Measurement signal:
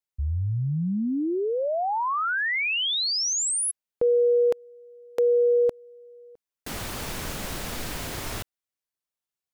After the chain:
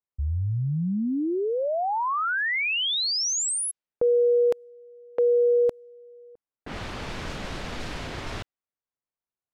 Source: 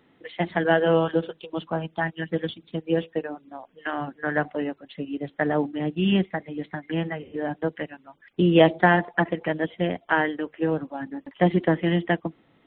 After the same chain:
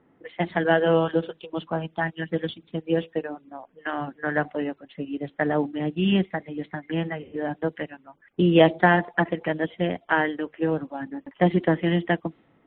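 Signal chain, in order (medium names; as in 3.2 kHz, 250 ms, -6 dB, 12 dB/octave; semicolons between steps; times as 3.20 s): level-controlled noise filter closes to 1.4 kHz, open at -22 dBFS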